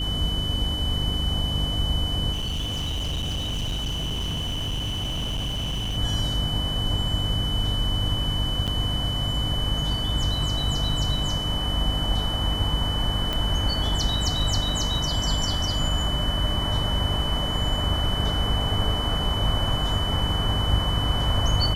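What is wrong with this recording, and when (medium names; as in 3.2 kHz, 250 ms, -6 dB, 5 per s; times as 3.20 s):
hum 50 Hz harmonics 6 -30 dBFS
whine 3 kHz -28 dBFS
2.32–5.98 s: clipped -24.5 dBFS
8.67–8.68 s: dropout 7.6 ms
13.33 s: pop -13 dBFS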